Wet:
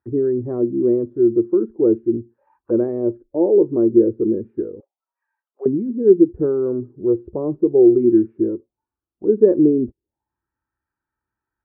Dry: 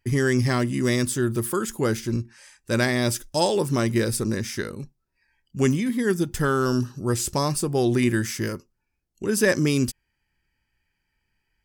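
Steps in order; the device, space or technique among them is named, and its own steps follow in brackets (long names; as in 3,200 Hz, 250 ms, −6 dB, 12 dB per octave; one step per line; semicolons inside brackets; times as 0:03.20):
envelope filter bass rig (envelope-controlled low-pass 410–1,300 Hz down, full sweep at −27 dBFS; loudspeaker in its box 62–2,200 Hz, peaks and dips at 170 Hz −7 dB, 320 Hz +7 dB, 2,100 Hz −9 dB)
noise reduction from a noise print of the clip's start 8 dB
0:04.80–0:05.66: Butterworth high-pass 550 Hz 36 dB per octave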